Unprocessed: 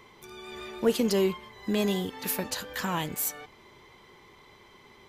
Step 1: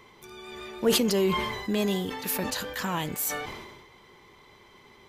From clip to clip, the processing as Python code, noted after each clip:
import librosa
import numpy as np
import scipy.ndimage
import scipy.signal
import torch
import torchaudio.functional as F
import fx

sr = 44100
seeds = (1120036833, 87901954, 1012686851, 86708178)

y = fx.sustainer(x, sr, db_per_s=42.0)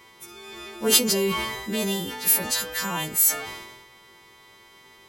y = fx.freq_snap(x, sr, grid_st=2)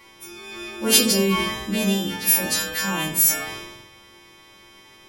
y = fx.room_shoebox(x, sr, seeds[0], volume_m3=470.0, walls='furnished', distance_m=2.3)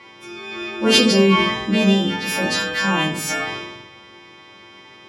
y = fx.bandpass_edges(x, sr, low_hz=100.0, high_hz=3800.0)
y = F.gain(torch.from_numpy(y), 6.5).numpy()